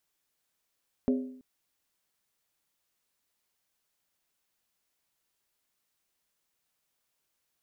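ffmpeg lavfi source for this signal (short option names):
-f lavfi -i "aevalsrc='0.0891*pow(10,-3*t/0.65)*sin(2*PI*256*t)+0.0422*pow(10,-3*t/0.515)*sin(2*PI*408.1*t)+0.02*pow(10,-3*t/0.445)*sin(2*PI*546.8*t)+0.00944*pow(10,-3*t/0.429)*sin(2*PI*587.8*t)+0.00447*pow(10,-3*t/0.399)*sin(2*PI*679.2*t)':d=0.33:s=44100"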